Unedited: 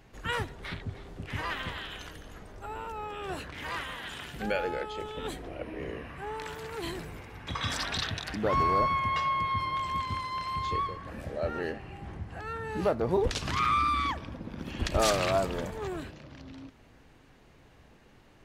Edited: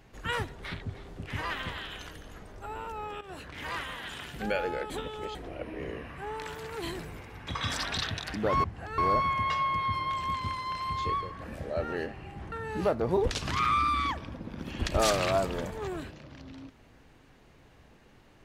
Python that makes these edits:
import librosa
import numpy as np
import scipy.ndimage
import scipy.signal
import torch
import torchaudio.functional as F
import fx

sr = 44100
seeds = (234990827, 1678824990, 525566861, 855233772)

y = fx.edit(x, sr, fx.fade_in_from(start_s=3.21, length_s=0.39, floor_db=-13.5),
    fx.reverse_span(start_s=4.9, length_s=0.45),
    fx.move(start_s=12.18, length_s=0.34, to_s=8.64), tone=tone)